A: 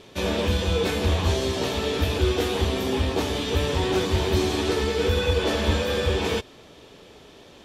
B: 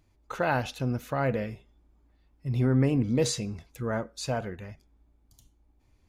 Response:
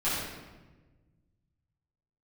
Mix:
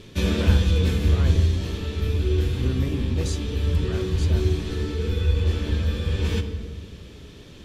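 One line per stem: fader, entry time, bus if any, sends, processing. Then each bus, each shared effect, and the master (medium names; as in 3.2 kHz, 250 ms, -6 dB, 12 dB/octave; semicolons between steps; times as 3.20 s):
+1.0 dB, 0.00 s, send -21.5 dB, bass shelf 200 Hz +11.5 dB; auto duck -15 dB, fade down 1.90 s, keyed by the second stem
-4.5 dB, 0.00 s, no send, none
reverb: on, RT60 1.3 s, pre-delay 6 ms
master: peaking EQ 760 Hz -11 dB 0.96 oct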